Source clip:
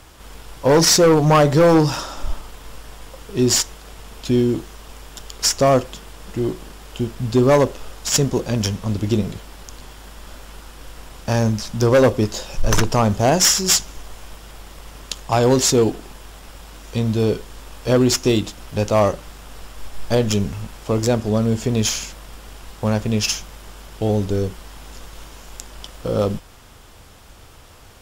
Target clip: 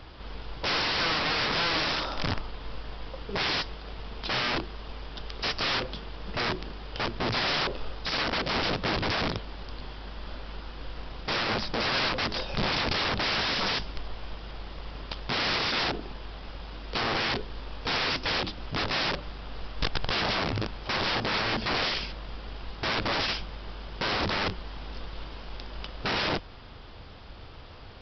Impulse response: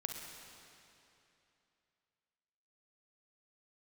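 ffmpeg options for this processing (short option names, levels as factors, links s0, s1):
-af "equalizer=f=1700:t=o:w=2.1:g=-2,aresample=11025,aeval=exprs='(mod(14.1*val(0)+1,2)-1)/14.1':c=same,aresample=44100"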